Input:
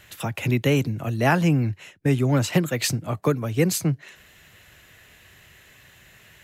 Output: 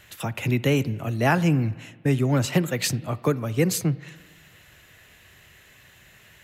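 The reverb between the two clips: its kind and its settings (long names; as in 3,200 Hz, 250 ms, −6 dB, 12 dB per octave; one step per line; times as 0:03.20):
spring reverb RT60 1.4 s, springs 44/58 ms, chirp 50 ms, DRR 18 dB
level −1 dB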